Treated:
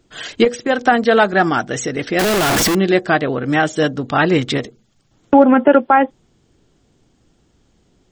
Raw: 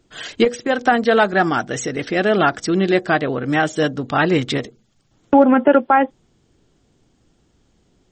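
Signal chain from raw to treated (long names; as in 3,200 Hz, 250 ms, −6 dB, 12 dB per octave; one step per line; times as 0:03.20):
0:02.19–0:02.75: sign of each sample alone
level +2 dB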